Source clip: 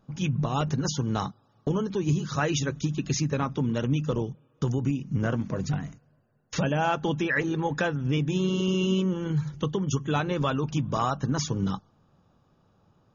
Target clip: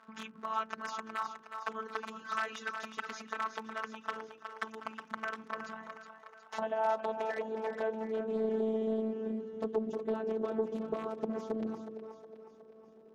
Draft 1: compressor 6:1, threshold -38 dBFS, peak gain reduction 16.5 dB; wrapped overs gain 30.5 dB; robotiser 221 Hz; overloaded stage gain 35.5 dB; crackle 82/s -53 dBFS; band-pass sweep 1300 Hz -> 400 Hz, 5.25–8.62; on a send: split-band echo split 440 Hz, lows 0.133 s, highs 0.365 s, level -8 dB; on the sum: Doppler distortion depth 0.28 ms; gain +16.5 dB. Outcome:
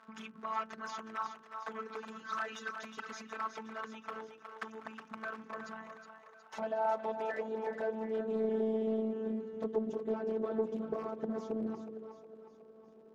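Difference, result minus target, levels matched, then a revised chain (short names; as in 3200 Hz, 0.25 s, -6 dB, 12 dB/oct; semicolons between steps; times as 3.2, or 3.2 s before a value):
overloaded stage: distortion +11 dB
compressor 6:1, threshold -38 dBFS, peak gain reduction 16.5 dB; wrapped overs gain 30.5 dB; robotiser 221 Hz; overloaded stage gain 24 dB; crackle 82/s -53 dBFS; band-pass sweep 1300 Hz -> 400 Hz, 5.25–8.62; on a send: split-band echo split 440 Hz, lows 0.133 s, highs 0.365 s, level -8 dB; on the sum: Doppler distortion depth 0.28 ms; gain +16.5 dB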